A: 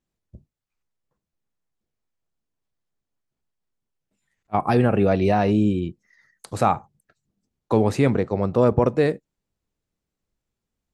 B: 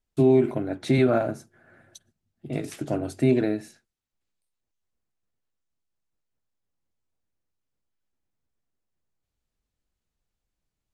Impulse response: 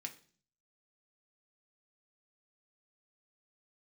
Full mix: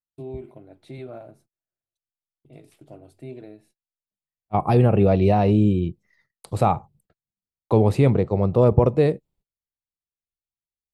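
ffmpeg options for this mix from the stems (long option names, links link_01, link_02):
-filter_complex "[0:a]lowshelf=frequency=320:gain=6.5,volume=0dB[link_01];[1:a]volume=-15dB[link_02];[link_01][link_02]amix=inputs=2:normalize=0,agate=range=-27dB:threshold=-57dB:ratio=16:detection=peak,equalizer=frequency=250:width_type=o:width=0.67:gain=-6,equalizer=frequency=1600:width_type=o:width=0.67:gain=-9,equalizer=frequency=6300:width_type=o:width=0.67:gain=-9"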